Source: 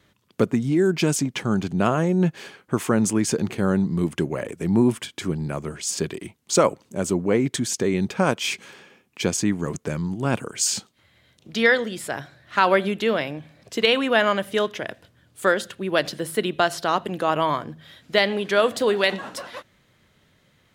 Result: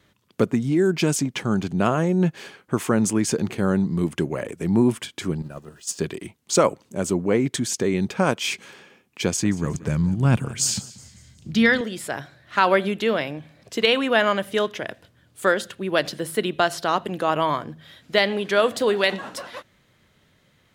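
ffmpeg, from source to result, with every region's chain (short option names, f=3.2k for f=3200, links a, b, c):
-filter_complex "[0:a]asettb=1/sr,asplit=3[a][b][c];[a]atrim=end=5.424[d];[b]atrim=start=5.42:end=5.99,asetpts=PTS-STARTPTS,afade=t=in:d=0.004:c=qsin,afade=t=out:st=0.566:d=0.004:c=qsin,aeval=exprs='val(0)+0.5*0.0119*sgn(val(0))':c=same,agate=range=-14dB:threshold=-26dB:ratio=16:release=100:detection=peak,asuperstop=centerf=2200:order=20:qfactor=7.1[e];[c]atrim=start=5.986[f];[d][e]acrossfade=d=0.004:c1=hsin:c2=qsin[g];[g][f]acrossfade=d=0.004:c1=qsin:c2=hsin,asettb=1/sr,asplit=3[h][i][j];[h]atrim=end=9.214[k];[i]atrim=start=9.21:end=11.81,asetpts=PTS-STARTPTS,afade=t=in:d=0.004:c=qsin,afade=t=out:st=2.596:d=0.004:c=qsin,asubboost=boost=11:cutoff=180,aecho=1:1:184|368|552|736:0.119|0.0523|0.023|0.0101,atrim=end_sample=114660[l];[j]atrim=start=11.806[m];[k][l]acrossfade=d=0.004:c1=hsin:c2=qsin[n];[n][m]acrossfade=d=0.004:c1=qsin:c2=hsin"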